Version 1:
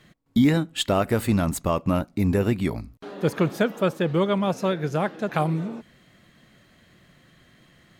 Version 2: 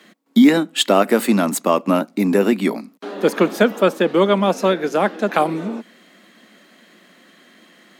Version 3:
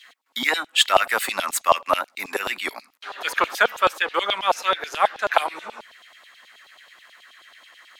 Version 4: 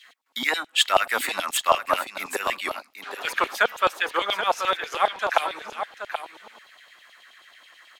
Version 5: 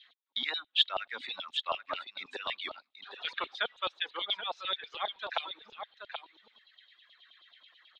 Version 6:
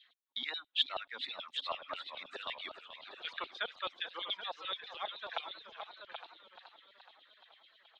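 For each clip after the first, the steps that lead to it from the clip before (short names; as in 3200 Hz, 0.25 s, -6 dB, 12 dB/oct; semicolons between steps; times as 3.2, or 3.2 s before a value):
steep high-pass 200 Hz 48 dB/oct; gain +8 dB
LFO high-pass saw down 9.3 Hz 700–3700 Hz; gain -1 dB
echo 0.779 s -9 dB; gain -2.5 dB
ladder low-pass 3900 Hz, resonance 75%; vocal rider within 4 dB 2 s; reverb removal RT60 1.9 s; gain -4 dB
warbling echo 0.428 s, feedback 61%, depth 142 cents, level -11.5 dB; gain -5.5 dB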